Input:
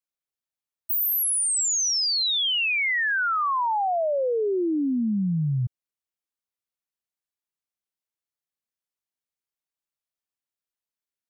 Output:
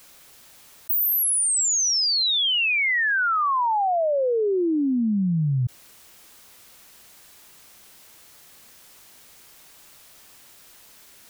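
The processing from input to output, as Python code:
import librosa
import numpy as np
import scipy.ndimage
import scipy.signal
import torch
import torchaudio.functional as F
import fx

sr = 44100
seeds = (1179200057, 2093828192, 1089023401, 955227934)

y = fx.env_flatten(x, sr, amount_pct=70)
y = y * 10.0 ** (2.0 / 20.0)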